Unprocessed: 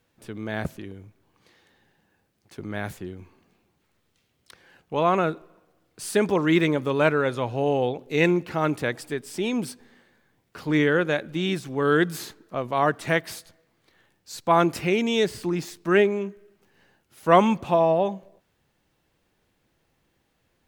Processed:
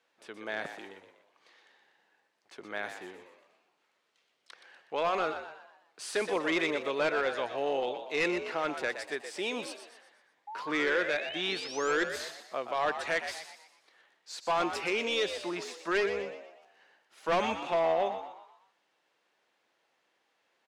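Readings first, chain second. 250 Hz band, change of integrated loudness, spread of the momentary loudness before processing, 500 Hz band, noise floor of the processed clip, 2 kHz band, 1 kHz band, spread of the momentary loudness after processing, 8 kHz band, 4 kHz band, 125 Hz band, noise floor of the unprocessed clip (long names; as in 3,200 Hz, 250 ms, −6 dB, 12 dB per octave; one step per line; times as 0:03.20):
−13.5 dB, −8.0 dB, 16 LU, −8.0 dB, −75 dBFS, −4.0 dB, −7.5 dB, 15 LU, −5.0 dB, −2.0 dB, −22.0 dB, −71 dBFS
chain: high-pass filter 580 Hz 12 dB per octave
dynamic equaliser 950 Hz, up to −6 dB, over −37 dBFS, Q 1
hard clipping −23 dBFS, distortion −10 dB
sound drawn into the spectrogram rise, 0:10.47–0:11.92, 810–7,600 Hz −41 dBFS
high-frequency loss of the air 70 metres
echo with shifted repeats 122 ms, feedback 43%, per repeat +72 Hz, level −9 dB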